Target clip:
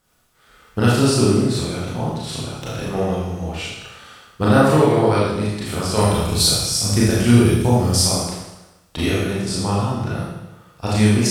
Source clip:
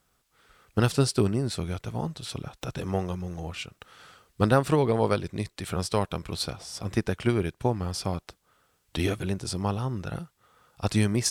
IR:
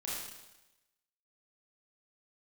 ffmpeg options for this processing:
-filter_complex "[0:a]asettb=1/sr,asplit=3[a][b][c];[a]atrim=end=5.974[d];[b]atrim=start=5.97:end=8.01,asetpts=PTS-STARTPTS,afade=t=in:d=0.004:c=qsin,afade=t=out:st=2.036:d=0.004:c=qsin,bass=f=250:g=6,treble=f=4k:g=13[e];[c]atrim=start=8.006[f];[d][e]acrossfade=d=0.004:c1=hsin:c2=qsin[g];[g][f]acrossfade=d=0.004:c1=qsin:c2=hsin[h];[1:a]atrim=start_sample=2205[i];[h][i]afir=irnorm=-1:irlink=0,volume=7dB"

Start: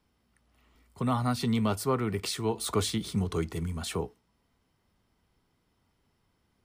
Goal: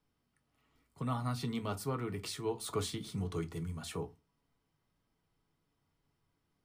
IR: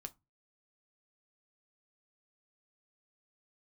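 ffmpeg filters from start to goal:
-filter_complex "[1:a]atrim=start_sample=2205[a];[0:a][a]afir=irnorm=-1:irlink=0,volume=-3dB"

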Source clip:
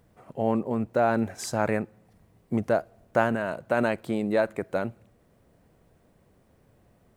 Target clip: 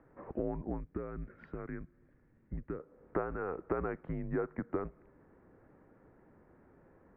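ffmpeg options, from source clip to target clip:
-filter_complex "[0:a]acompressor=threshold=-36dB:ratio=5,highpass=f=260:t=q:w=0.5412,highpass=f=260:t=q:w=1.307,lowpass=f=2.1k:t=q:w=0.5176,lowpass=f=2.1k:t=q:w=0.7071,lowpass=f=2.1k:t=q:w=1.932,afreqshift=-180,asettb=1/sr,asplit=3[a][b][c];[a]atrim=end=0.804[d];[b]atrim=start=0.8:end=2.8,asetpts=PTS-STARTPTS,afade=t=in:d=0.004:c=qsin,afade=t=out:st=1.996:d=0.004:c=qsin,equalizer=f=750:w=0.75:g=-14.5[e];[c]atrim=start=2.796[f];[d][e]acrossfade=d=0.004:c1=hsin:c2=qsin[g];[g][f]acrossfade=d=0.004:c1=qsin:c2=hsin,volume=4dB"

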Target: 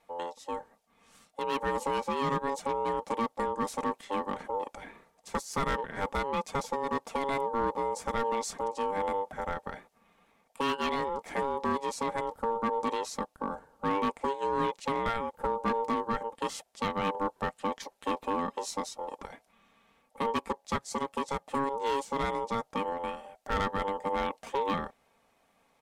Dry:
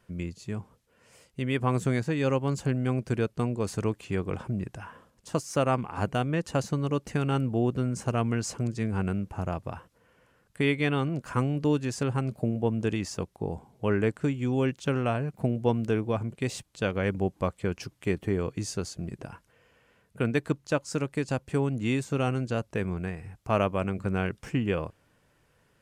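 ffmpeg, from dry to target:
-af "aecho=1:1:4.4:0.45,asoftclip=type=hard:threshold=-21.5dB,aeval=exprs='val(0)*sin(2*PI*690*n/s)':c=same"

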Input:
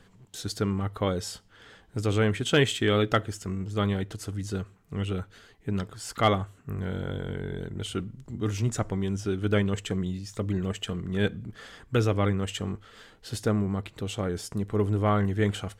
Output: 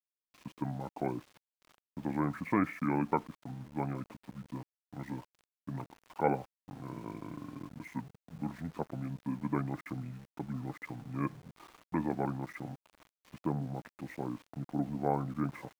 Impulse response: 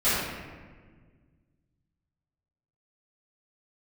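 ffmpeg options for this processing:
-af "highpass=f=210:w=0.5412,highpass=f=210:w=1.3066,equalizer=f=540:t=q:w=4:g=-3,equalizer=f=1k:t=q:w=4:g=5,equalizer=f=2.2k:t=q:w=4:g=-4,lowpass=f=2.8k:w=0.5412,lowpass=f=2.8k:w=1.3066,asetrate=30296,aresample=44100,atempo=1.45565,aeval=exprs='val(0)*gte(abs(val(0)),0.00473)':c=same,volume=-5.5dB"

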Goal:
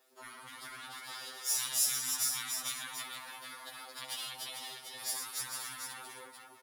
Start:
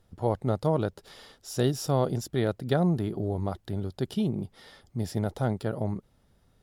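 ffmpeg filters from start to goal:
-filter_complex "[0:a]aeval=exprs='if(lt(val(0),0),0.447*val(0),val(0))':c=same,highpass=f=370:w=0.5412,highpass=f=370:w=1.3066,highshelf=f=2.7k:g=-10,asplit=2[a][b];[b]aecho=0:1:68|101|114|292|302:0.376|0.224|0.398|0.596|0.447[c];[a][c]amix=inputs=2:normalize=0,acompressor=threshold=-33dB:ratio=3,afftfilt=real='re*lt(hypot(re,im),0.0158)':imag='im*lt(hypot(re,im),0.0158)':win_size=1024:overlap=0.75,crystalizer=i=6:c=0,adynamicequalizer=threshold=0.00501:dfrequency=9500:dqfactor=1.2:tfrequency=9500:tqfactor=1.2:attack=5:release=100:ratio=0.375:range=2.5:mode=boostabove:tftype=bell,asplit=2[d][e];[e]aecho=0:1:447:0.531[f];[d][f]amix=inputs=2:normalize=0,afftfilt=real='re*2.45*eq(mod(b,6),0)':imag='im*2.45*eq(mod(b,6),0)':win_size=2048:overlap=0.75,volume=3.5dB"

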